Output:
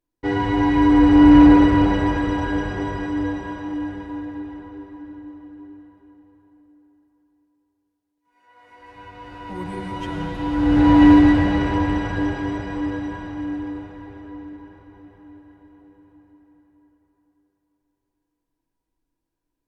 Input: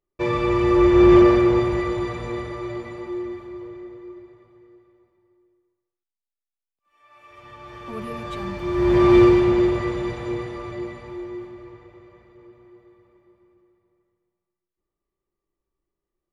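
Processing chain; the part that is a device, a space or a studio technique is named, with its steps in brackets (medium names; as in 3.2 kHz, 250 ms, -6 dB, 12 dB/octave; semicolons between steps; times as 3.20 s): slowed and reverbed (tape speed -17%; reverberation RT60 4.6 s, pre-delay 98 ms, DRR 2 dB); trim +1 dB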